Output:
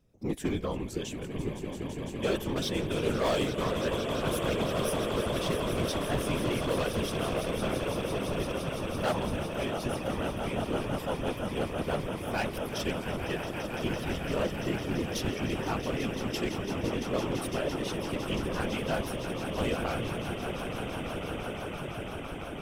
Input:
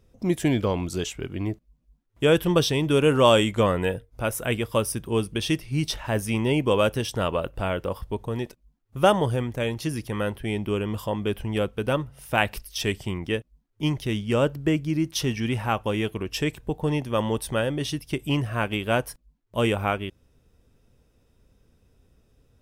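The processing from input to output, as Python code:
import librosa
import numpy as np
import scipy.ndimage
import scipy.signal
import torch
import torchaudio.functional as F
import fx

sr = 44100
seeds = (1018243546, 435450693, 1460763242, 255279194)

y = fx.echo_swell(x, sr, ms=169, loudest=8, wet_db=-11.5)
y = np.clip(10.0 ** (16.5 / 20.0) * y, -1.0, 1.0) / 10.0 ** (16.5 / 20.0)
y = fx.whisperise(y, sr, seeds[0])
y = y * librosa.db_to_amplitude(-8.0)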